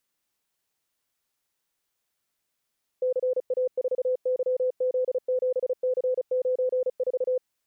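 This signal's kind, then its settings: Morse "CA4YZ7C94" 35 wpm 508 Hz -21.5 dBFS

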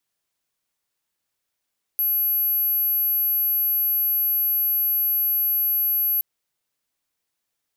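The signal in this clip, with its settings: tone sine 11700 Hz -18.5 dBFS 4.22 s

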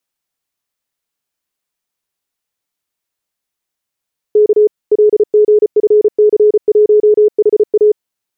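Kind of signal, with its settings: Morse "K LGFC1HA" 34 wpm 422 Hz -4.5 dBFS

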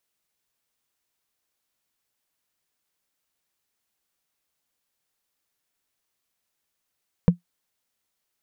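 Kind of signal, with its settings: wood hit, lowest mode 174 Hz, decay 0.12 s, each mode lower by 8.5 dB, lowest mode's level -6.5 dB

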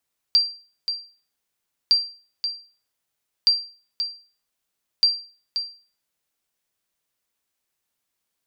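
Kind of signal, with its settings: sonar ping 4720 Hz, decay 0.39 s, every 1.56 s, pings 4, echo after 0.53 s, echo -9 dB -9.5 dBFS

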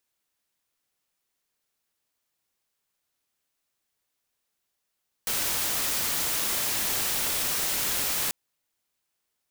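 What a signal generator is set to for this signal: noise white, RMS -27.5 dBFS 3.04 s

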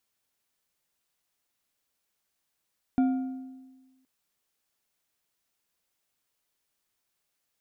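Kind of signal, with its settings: metal hit bar, length 1.07 s, lowest mode 261 Hz, decay 1.35 s, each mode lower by 12 dB, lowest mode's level -18.5 dB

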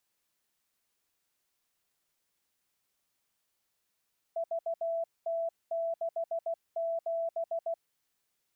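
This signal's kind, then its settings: Morse "VT67" 16 wpm 665 Hz -29.5 dBFS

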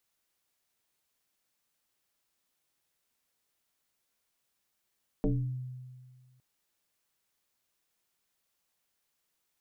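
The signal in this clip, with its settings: FM tone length 1.16 s, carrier 127 Hz, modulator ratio 1.24, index 2.6, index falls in 0.57 s exponential, decay 1.76 s, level -23 dB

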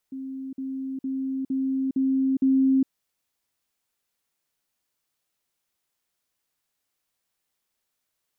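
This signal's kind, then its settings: level ladder 266 Hz -31.5 dBFS, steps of 3 dB, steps 6, 0.41 s 0.05 s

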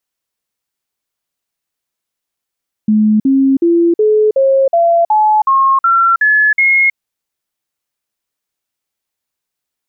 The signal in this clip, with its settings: stepped sine 214 Hz up, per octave 3, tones 11, 0.32 s, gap 0.05 s -7 dBFS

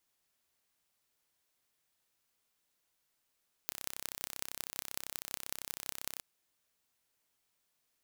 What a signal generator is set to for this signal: pulse train 32.7/s, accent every 6, -8 dBFS 2.51 s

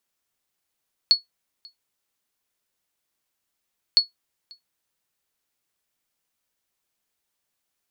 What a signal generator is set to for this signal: sonar ping 4380 Hz, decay 0.14 s, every 2.86 s, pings 2, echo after 0.54 s, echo -29 dB -7 dBFS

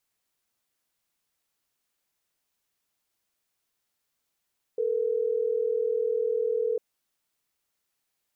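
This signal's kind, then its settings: call progress tone ringback tone, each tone -26.5 dBFS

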